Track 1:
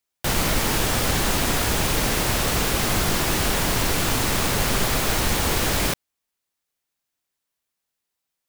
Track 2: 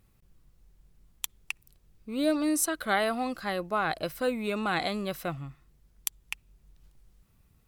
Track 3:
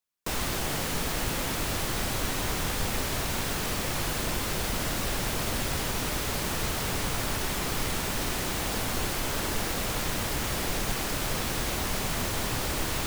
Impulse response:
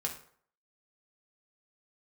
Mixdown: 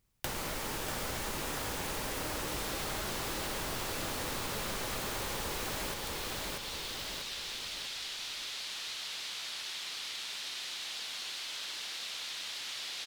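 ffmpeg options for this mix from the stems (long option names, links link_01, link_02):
-filter_complex "[0:a]bandreject=frequency=700:width=13,acrossover=split=360|1200[link_01][link_02][link_03];[link_01]acompressor=threshold=-35dB:ratio=4[link_04];[link_02]acompressor=threshold=-33dB:ratio=4[link_05];[link_03]acompressor=threshold=-31dB:ratio=4[link_06];[link_04][link_05][link_06]amix=inputs=3:normalize=0,volume=0.5dB,asplit=2[link_07][link_08];[link_08]volume=-4.5dB[link_09];[1:a]volume=-13dB[link_10];[2:a]bandpass=frequency=3800:width_type=q:width=1.9:csg=0,adelay=2250,volume=1.5dB[link_11];[link_09]aecho=0:1:640|1280|1920|2560|3200:1|0.38|0.144|0.0549|0.0209[link_12];[link_07][link_10][link_11][link_12]amix=inputs=4:normalize=0,acompressor=threshold=-37dB:ratio=3"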